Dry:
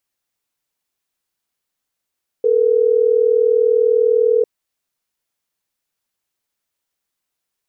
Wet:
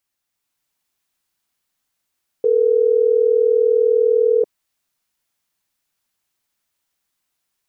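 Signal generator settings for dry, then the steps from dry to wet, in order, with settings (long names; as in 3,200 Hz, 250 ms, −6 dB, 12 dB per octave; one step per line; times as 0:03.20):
call progress tone ringback tone, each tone −14 dBFS
parametric band 470 Hz −5 dB 0.66 octaves
automatic gain control gain up to 4 dB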